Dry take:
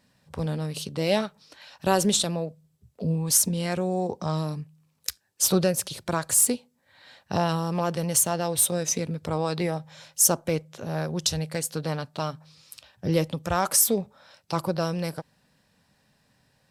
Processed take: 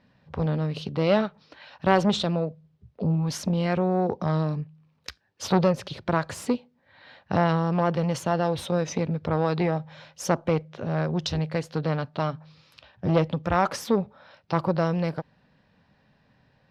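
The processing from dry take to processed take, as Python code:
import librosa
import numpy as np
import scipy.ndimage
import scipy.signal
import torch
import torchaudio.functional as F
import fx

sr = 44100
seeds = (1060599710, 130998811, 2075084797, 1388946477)

y = fx.air_absorb(x, sr, metres=260.0)
y = fx.transformer_sat(y, sr, knee_hz=770.0)
y = F.gain(torch.from_numpy(y), 4.5).numpy()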